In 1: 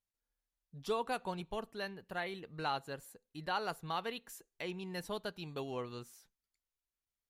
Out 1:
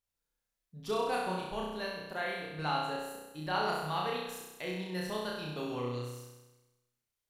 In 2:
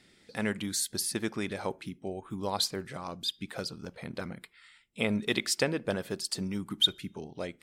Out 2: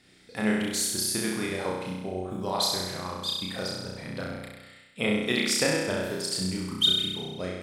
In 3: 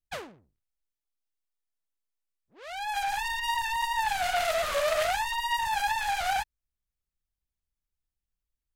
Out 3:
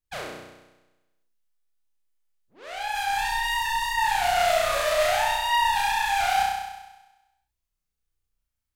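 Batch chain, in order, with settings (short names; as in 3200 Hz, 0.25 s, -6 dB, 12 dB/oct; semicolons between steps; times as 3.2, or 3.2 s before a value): flutter echo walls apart 5.6 m, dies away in 1.1 s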